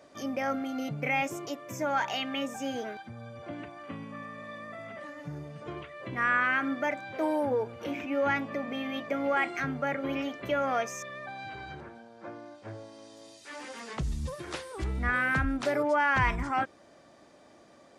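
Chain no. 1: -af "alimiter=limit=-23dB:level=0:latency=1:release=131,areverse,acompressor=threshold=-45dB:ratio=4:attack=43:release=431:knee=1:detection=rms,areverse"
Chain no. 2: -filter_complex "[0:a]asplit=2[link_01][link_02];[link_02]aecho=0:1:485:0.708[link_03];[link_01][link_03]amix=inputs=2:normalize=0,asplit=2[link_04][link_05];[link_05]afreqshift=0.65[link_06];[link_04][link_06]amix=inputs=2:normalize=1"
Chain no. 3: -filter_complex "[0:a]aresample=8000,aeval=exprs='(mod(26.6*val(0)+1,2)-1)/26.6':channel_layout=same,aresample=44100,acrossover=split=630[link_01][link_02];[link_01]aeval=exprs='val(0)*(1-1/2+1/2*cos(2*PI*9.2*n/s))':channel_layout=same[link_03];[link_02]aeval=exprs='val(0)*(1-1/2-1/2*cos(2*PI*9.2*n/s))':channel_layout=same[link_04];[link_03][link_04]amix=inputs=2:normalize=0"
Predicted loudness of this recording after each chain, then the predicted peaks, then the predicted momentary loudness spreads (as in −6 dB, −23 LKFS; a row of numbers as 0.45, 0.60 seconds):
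−46.5, −33.0, −39.5 LKFS; −31.5, −15.5, −23.5 dBFS; 5, 17, 13 LU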